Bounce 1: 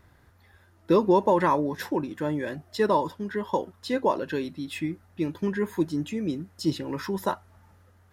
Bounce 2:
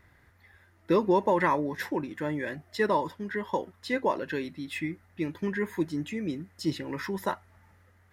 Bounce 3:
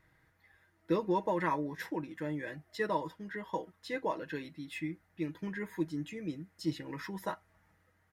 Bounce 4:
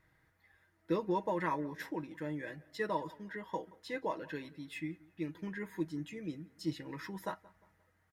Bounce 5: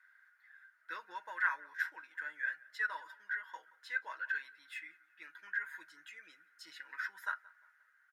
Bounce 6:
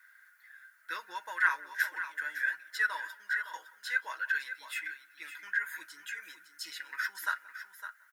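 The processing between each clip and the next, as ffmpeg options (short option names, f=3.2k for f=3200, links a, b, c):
-af "equalizer=f=2k:w=2.6:g=9.5,volume=-3.5dB"
-af "aecho=1:1:6.3:0.54,volume=-8dB"
-filter_complex "[0:a]asplit=2[a][b];[b]adelay=176,lowpass=f=2.9k:p=1,volume=-22dB,asplit=2[c][d];[d]adelay=176,lowpass=f=2.9k:p=1,volume=0.41,asplit=2[e][f];[f]adelay=176,lowpass=f=2.9k:p=1,volume=0.41[g];[a][c][e][g]amix=inputs=4:normalize=0,volume=-2.5dB"
-af "highpass=f=1.5k:t=q:w=14,volume=-4.5dB"
-af "crystalizer=i=3:c=0,aecho=1:1:559:0.282,volume=3.5dB"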